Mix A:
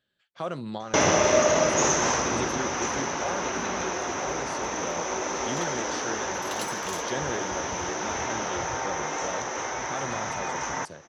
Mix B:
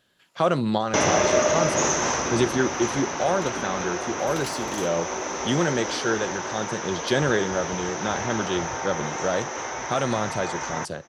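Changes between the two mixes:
speech +11.0 dB; second sound: entry -2.15 s

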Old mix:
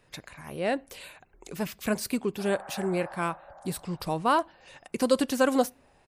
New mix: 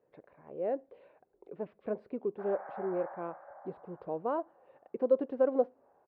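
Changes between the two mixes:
speech: add band-pass filter 480 Hz, Q 2.2; master: add distance through air 450 m

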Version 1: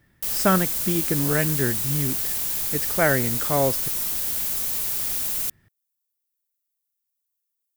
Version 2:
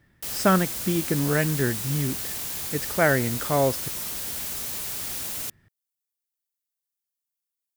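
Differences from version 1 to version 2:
background: add high-pass 43 Hz; master: add treble shelf 9.1 kHz -8 dB

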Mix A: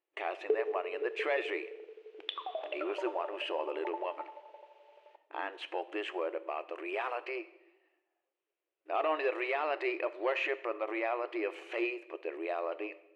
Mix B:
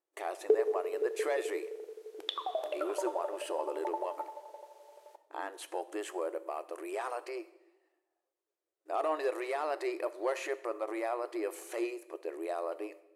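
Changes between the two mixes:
background +4.5 dB; master: remove resonant low-pass 2.7 kHz, resonance Q 3.3

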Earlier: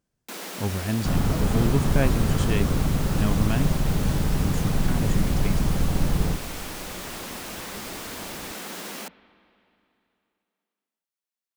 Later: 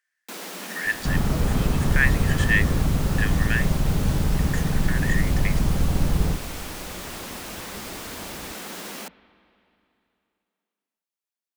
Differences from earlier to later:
speech: add resonant high-pass 1.8 kHz, resonance Q 12; master: add peaking EQ 61 Hz +4 dB 1.2 oct

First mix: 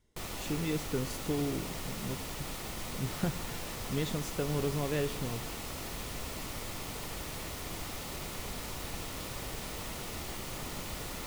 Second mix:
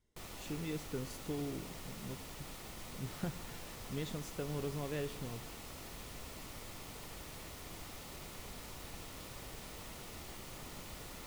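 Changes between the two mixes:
speech -7.0 dB; background -8.5 dB

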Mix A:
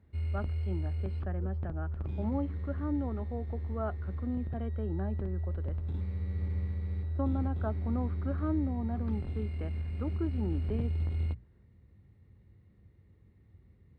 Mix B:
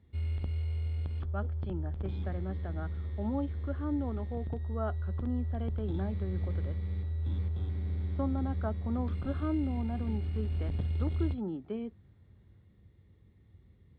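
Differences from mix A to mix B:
speech: entry +1.00 s; master: add peaking EQ 3.4 kHz +11.5 dB 0.22 oct

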